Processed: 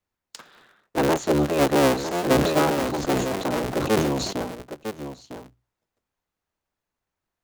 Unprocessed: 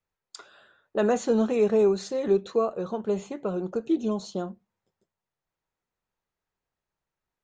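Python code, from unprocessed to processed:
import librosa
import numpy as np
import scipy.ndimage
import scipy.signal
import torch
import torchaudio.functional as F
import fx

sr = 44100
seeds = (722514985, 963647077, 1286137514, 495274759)

y = fx.cycle_switch(x, sr, every=3, mode='inverted')
y = fx.hum_notches(y, sr, base_hz=60, count=2)
y = y + 10.0 ** (-9.5 / 20.0) * np.pad(y, (int(954 * sr / 1000.0), 0))[:len(y)]
y = fx.sustainer(y, sr, db_per_s=40.0, at=(2.32, 4.33))
y = F.gain(torch.from_numpy(y), 2.0).numpy()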